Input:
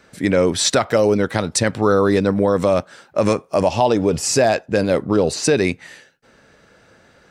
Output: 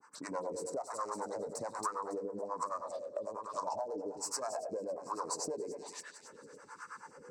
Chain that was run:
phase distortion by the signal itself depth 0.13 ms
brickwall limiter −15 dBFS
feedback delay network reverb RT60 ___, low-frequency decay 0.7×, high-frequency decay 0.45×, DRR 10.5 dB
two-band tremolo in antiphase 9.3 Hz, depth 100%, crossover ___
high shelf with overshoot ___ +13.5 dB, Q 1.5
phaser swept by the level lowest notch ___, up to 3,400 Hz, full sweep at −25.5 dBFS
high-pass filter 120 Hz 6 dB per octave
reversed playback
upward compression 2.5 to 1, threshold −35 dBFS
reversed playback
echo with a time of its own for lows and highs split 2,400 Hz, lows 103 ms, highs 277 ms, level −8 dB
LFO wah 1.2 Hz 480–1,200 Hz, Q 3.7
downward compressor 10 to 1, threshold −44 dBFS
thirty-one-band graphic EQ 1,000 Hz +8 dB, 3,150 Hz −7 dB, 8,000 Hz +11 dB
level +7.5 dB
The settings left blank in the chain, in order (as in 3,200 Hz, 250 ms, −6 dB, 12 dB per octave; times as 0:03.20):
0.69 s, 470 Hz, 3,300 Hz, 580 Hz